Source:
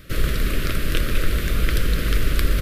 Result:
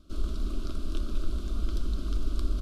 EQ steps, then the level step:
high-frequency loss of the air 87 metres
parametric band 2,300 Hz −11.5 dB 0.92 octaves
phaser with its sweep stopped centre 490 Hz, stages 6
−7.5 dB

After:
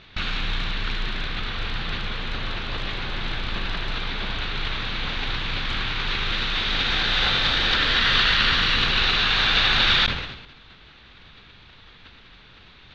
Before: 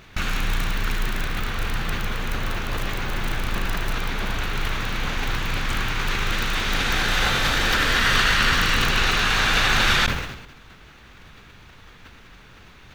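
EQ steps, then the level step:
transistor ladder low-pass 4,400 Hz, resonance 55%
+6.5 dB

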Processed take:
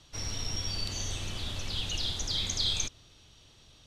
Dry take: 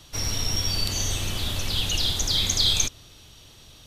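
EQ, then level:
low-pass filter 7,700 Hz 12 dB per octave
−8.0 dB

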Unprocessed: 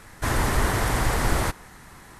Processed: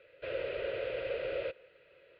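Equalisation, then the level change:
formant filter e
elliptic low-pass filter 4,900 Hz
phaser with its sweep stopped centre 1,200 Hz, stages 8
+5.0 dB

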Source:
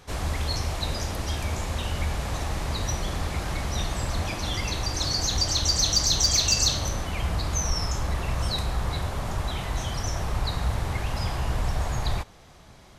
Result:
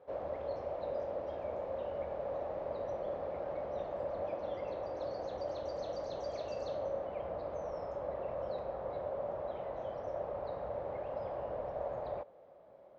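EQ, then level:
resonant band-pass 560 Hz, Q 6.8
high-frequency loss of the air 170 metres
+7.0 dB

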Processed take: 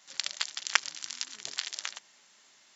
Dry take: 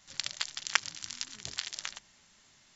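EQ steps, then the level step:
high-pass filter 340 Hz 12 dB per octave
+2.0 dB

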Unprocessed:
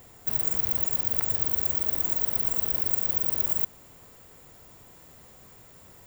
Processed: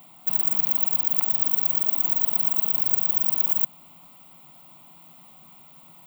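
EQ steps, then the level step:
elliptic high-pass filter 150 Hz, stop band 50 dB
parametric band 12,000 Hz −4.5 dB 0.41 octaves
phaser with its sweep stopped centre 1,700 Hz, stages 6
+5.0 dB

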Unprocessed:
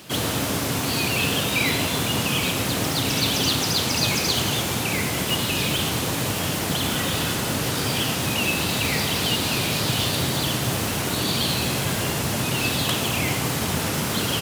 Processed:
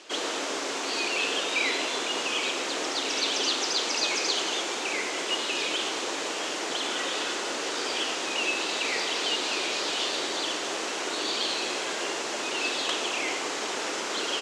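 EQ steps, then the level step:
elliptic band-pass filter 350–7,100 Hz, stop band 60 dB
−3.0 dB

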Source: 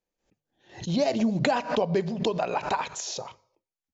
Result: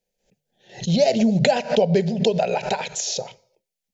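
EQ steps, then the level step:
phaser with its sweep stopped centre 300 Hz, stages 6
+8.5 dB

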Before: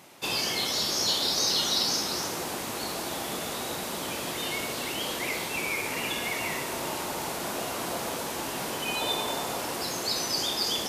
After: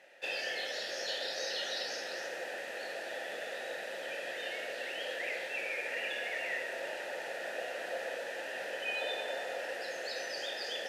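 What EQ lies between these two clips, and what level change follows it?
formant filter e
flat-topped bell 1,100 Hz +9.5 dB
high-shelf EQ 2,500 Hz +11 dB
0.0 dB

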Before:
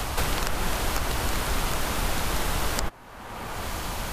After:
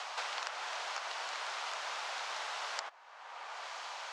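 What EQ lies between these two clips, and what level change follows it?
high-pass filter 660 Hz 24 dB per octave
low-pass filter 6,300 Hz 24 dB per octave
−8.0 dB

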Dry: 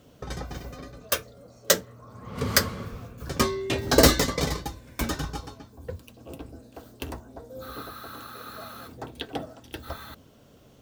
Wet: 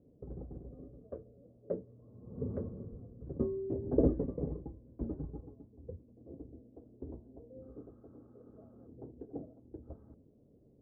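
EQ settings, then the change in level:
transistor ladder low-pass 520 Hz, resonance 30%
−2.5 dB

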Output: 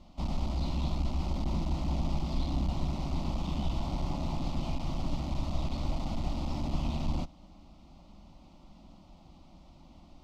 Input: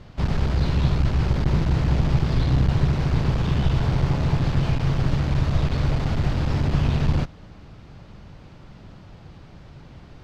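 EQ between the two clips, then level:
phaser with its sweep stopped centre 440 Hz, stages 6
−6.0 dB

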